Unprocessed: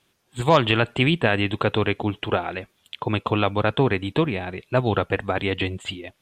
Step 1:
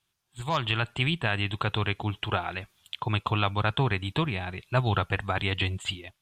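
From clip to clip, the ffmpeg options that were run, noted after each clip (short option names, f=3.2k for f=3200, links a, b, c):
-af "equalizer=f=250:t=o:w=1:g=-9,equalizer=f=500:t=o:w=1:g=-11,equalizer=f=2k:t=o:w=1:g=-4,dynaudnorm=f=400:g=3:m=12dB,volume=-8.5dB"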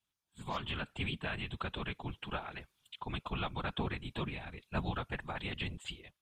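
-af "afftfilt=real='hypot(re,im)*cos(2*PI*random(0))':imag='hypot(re,im)*sin(2*PI*random(1))':win_size=512:overlap=0.75,volume=-5dB"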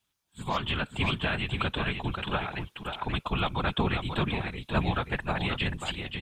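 -af "aecho=1:1:533:0.501,volume=8.5dB"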